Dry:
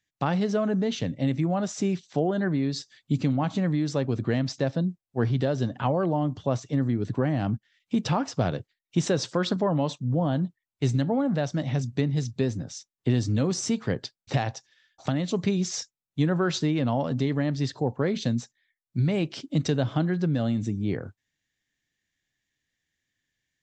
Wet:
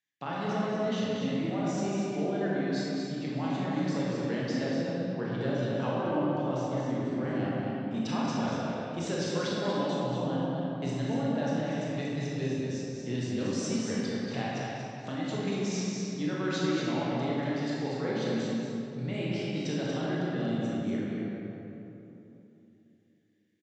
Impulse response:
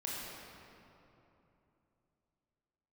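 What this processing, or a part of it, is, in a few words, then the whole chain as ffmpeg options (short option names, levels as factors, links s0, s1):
stadium PA: -filter_complex "[0:a]highpass=180,equalizer=f=2500:t=o:w=1.5:g=4,aecho=1:1:192.4|236.2:0.282|0.501[s0];[1:a]atrim=start_sample=2205[s1];[s0][s1]afir=irnorm=-1:irlink=0,volume=0.422"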